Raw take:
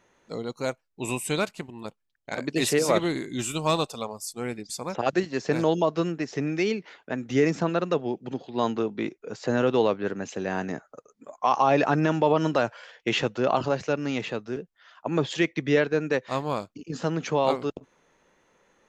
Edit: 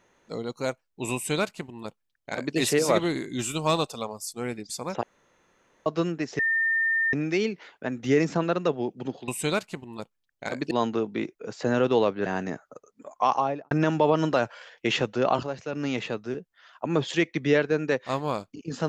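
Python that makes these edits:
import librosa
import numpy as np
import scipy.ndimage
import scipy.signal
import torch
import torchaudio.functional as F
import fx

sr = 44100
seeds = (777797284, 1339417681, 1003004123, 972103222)

y = fx.studio_fade_out(x, sr, start_s=11.47, length_s=0.46)
y = fx.edit(y, sr, fx.duplicate(start_s=1.14, length_s=1.43, to_s=8.54),
    fx.room_tone_fill(start_s=5.03, length_s=0.83),
    fx.insert_tone(at_s=6.39, length_s=0.74, hz=1810.0, db=-21.0),
    fx.cut(start_s=10.09, length_s=0.39),
    fx.clip_gain(start_s=13.65, length_s=0.3, db=-7.0), tone=tone)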